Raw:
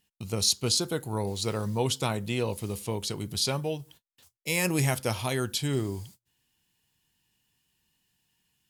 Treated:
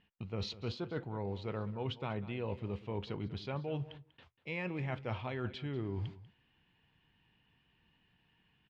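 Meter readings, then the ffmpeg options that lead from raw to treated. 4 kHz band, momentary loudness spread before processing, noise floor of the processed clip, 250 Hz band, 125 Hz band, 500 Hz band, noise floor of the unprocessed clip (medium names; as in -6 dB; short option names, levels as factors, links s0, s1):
-17.0 dB, 10 LU, -74 dBFS, -8.5 dB, -8.0 dB, -9.0 dB, under -85 dBFS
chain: -filter_complex "[0:a]lowpass=f=2800:w=0.5412,lowpass=f=2800:w=1.3066,areverse,acompressor=threshold=0.00794:ratio=10,areverse,asplit=2[s0][s1];[s1]adelay=192.4,volume=0.158,highshelf=f=4000:g=-4.33[s2];[s0][s2]amix=inputs=2:normalize=0,volume=2.11"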